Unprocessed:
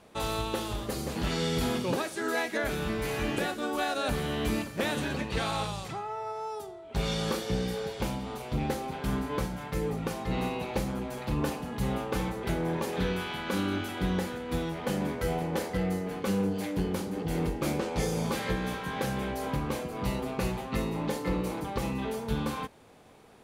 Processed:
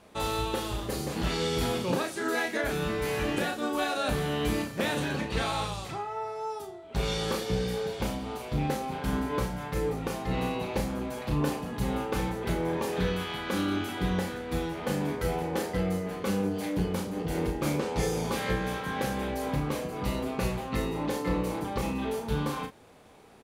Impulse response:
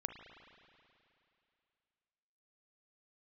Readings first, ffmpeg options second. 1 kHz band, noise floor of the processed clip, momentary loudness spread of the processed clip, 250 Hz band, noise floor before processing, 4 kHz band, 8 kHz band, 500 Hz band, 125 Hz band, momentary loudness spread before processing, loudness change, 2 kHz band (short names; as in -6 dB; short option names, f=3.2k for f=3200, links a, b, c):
+1.5 dB, -41 dBFS, 4 LU, +0.5 dB, -43 dBFS, +1.0 dB, +1.0 dB, +1.5 dB, +0.5 dB, 4 LU, +1.0 dB, +1.0 dB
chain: -filter_complex "[0:a]asplit=2[a][b];[b]adelay=34,volume=-6dB[c];[a][c]amix=inputs=2:normalize=0"